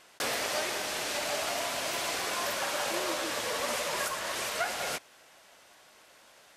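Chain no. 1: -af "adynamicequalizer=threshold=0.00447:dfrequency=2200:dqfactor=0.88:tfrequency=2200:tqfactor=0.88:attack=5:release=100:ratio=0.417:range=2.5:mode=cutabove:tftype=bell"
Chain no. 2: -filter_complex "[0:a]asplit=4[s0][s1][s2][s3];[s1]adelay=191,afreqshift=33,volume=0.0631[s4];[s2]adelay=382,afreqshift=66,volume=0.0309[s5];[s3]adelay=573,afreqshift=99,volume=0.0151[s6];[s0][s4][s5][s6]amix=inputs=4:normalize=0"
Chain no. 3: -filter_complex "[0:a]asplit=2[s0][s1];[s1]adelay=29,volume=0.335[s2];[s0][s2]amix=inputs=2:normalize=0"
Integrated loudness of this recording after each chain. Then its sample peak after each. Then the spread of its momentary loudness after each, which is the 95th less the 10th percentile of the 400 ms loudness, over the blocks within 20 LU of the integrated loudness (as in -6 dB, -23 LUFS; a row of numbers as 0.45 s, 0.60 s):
-33.0 LUFS, -31.5 LUFS, -31.0 LUFS; -19.5 dBFS, -18.5 dBFS, -18.5 dBFS; 2 LU, 2 LU, 2 LU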